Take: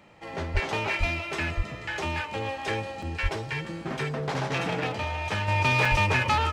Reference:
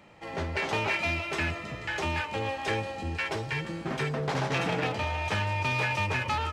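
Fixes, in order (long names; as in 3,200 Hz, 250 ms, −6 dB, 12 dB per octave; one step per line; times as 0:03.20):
high-pass at the plosives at 0:00.53/0:00.99/0:01.56/0:03.22/0:05.90
repair the gap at 0:03.02/0:05.85, 4 ms
level correction −5.5 dB, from 0:05.48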